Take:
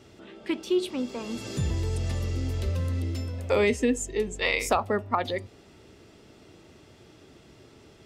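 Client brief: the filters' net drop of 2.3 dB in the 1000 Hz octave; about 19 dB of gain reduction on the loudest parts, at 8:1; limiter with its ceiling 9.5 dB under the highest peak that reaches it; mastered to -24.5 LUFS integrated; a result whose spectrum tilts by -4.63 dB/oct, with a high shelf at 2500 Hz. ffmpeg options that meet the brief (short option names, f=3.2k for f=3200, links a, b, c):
-af "equalizer=f=1k:t=o:g=-4,highshelf=f=2.5k:g=4.5,acompressor=threshold=-40dB:ratio=8,volume=22.5dB,alimiter=limit=-14.5dB:level=0:latency=1"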